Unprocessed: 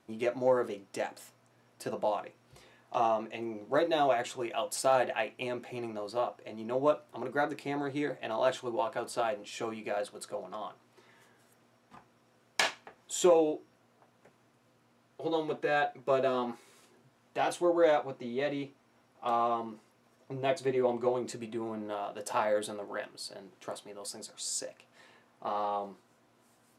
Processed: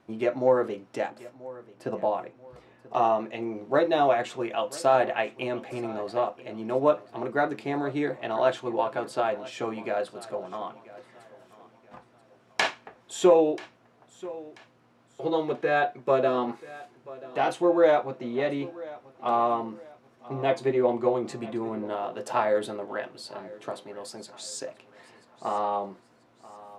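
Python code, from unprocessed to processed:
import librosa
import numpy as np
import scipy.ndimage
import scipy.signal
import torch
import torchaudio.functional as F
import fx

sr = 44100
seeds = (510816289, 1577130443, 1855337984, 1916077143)

y = fx.lowpass(x, sr, hz=fx.steps((0.0, 2400.0), (1.1, 1200.0), (2.95, 2900.0)), slope=6)
y = fx.echo_feedback(y, sr, ms=985, feedback_pct=36, wet_db=-19.0)
y = y * librosa.db_to_amplitude(5.5)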